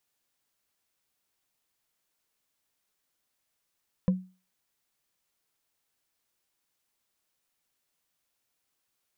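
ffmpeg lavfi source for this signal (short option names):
-f lavfi -i "aevalsrc='0.141*pow(10,-3*t/0.33)*sin(2*PI*185*t)+0.0447*pow(10,-3*t/0.098)*sin(2*PI*510*t)+0.0141*pow(10,-3*t/0.044)*sin(2*PI*999.7*t)+0.00447*pow(10,-3*t/0.024)*sin(2*PI*1652.6*t)+0.00141*pow(10,-3*t/0.015)*sin(2*PI*2467.9*t)':d=0.45:s=44100"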